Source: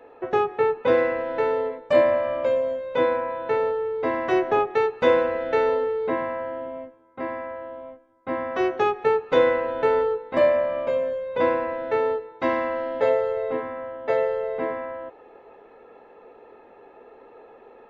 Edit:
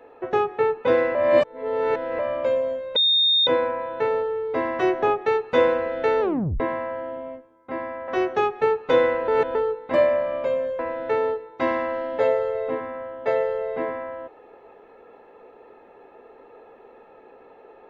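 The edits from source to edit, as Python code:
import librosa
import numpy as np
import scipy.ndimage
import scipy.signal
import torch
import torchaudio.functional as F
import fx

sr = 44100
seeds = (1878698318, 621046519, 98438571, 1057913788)

y = fx.edit(x, sr, fx.reverse_span(start_s=1.15, length_s=1.04),
    fx.insert_tone(at_s=2.96, length_s=0.51, hz=3670.0, db=-15.5),
    fx.tape_stop(start_s=5.7, length_s=0.39),
    fx.cut(start_s=7.57, length_s=0.94),
    fx.reverse_span(start_s=9.71, length_s=0.27),
    fx.cut(start_s=11.22, length_s=0.39), tone=tone)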